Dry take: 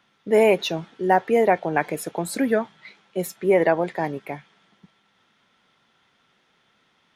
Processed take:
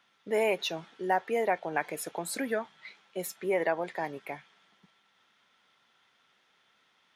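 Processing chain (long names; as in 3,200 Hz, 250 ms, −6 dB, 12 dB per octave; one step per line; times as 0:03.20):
low-shelf EQ 400 Hz −11 dB
in parallel at −1.5 dB: downward compressor, threshold −30 dBFS, peak gain reduction 14 dB
on the sum: level −8 dB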